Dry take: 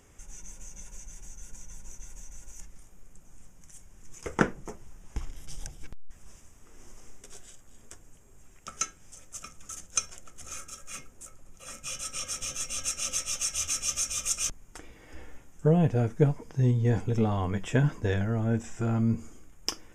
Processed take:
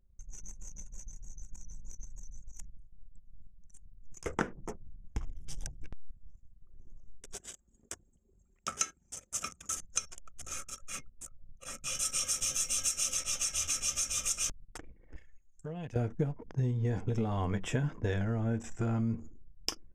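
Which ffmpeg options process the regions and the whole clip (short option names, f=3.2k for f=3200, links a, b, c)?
-filter_complex "[0:a]asettb=1/sr,asplit=3[a][b][c];[a]atrim=end=7.344[d];[b]atrim=start=7.34:end=9.77,asetpts=PTS-STARTPTS,afade=t=in:d=0.004:c=qsin,afade=t=out:st=2.426:d=0.004:c=qsin,highpass=57,lowshelf=f=150:g=-5,acontrast=52[e];[c]atrim=start=9.766[f];[d][e]acrossfade=d=0.004:c1=hsin:c2=qsin[g];[g][f]acrossfade=d=0.004:c1=qsin:c2=hsin,asettb=1/sr,asplit=3[h][i][j];[h]atrim=end=11.954[k];[i]atrim=start=11.95:end=13.14,asetpts=PTS-STARTPTS,afade=t=in:d=0.004:c=qsin,afade=t=out:st=1.186:d=0.004:c=qsin,highshelf=f=5k:g=9,volume=14dB,asoftclip=hard,volume=-14dB[l];[j]atrim=start=13.136[m];[k][l]acrossfade=d=0.004:c1=hsin:c2=qsin[n];[n][m]acrossfade=d=0.004:c1=qsin:c2=hsin,asettb=1/sr,asplit=3[o][p][q];[o]atrim=end=15.164[r];[p]atrim=start=15.16:end=15.96,asetpts=PTS-STARTPTS,afade=t=in:d=0.004:c=qsin,afade=t=out:st=0.796:d=0.004:c=qsin,tiltshelf=f=1.5k:g=-9.5,acompressor=threshold=-40dB:ratio=3:attack=3.2:release=140:knee=1:detection=peak[s];[q]atrim=start=15.956[t];[r][s]acrossfade=d=0.004:c1=hsin:c2=qsin[u];[u][t]acrossfade=d=0.004:c1=qsin:c2=hsin,anlmdn=0.0251,acompressor=threshold=-28dB:ratio=6"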